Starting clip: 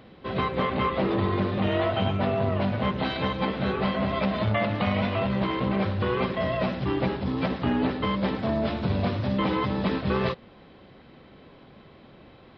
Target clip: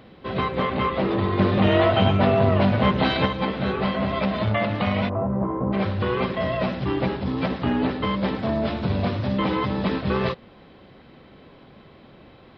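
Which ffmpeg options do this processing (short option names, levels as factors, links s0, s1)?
-filter_complex "[0:a]asettb=1/sr,asplit=3[s0][s1][s2];[s0]atrim=end=1.394[s3];[s1]atrim=start=1.39:end=3.26,asetpts=PTS-STARTPTS,afade=t=in:d=0.004:c=qsin,afade=t=out:st=1.866:d=0.004:c=qsin,acontrast=21[s4];[s2]atrim=start=3.256[s5];[s3][s4]acrossfade=d=0.004:c1=hsin:c2=qsin[s6];[s6][s5]acrossfade=d=0.004:c1=qsin:c2=hsin,asplit=3[s7][s8][s9];[s7]afade=t=out:st=5.08:d=0.02[s10];[s8]lowpass=f=1100:w=0.5412,lowpass=f=1100:w=1.3066,afade=t=in:st=5.08:d=0.02,afade=t=out:st=5.72:d=0.02[s11];[s9]afade=t=in:st=5.72:d=0.02[s12];[s10][s11][s12]amix=inputs=3:normalize=0,volume=1.26"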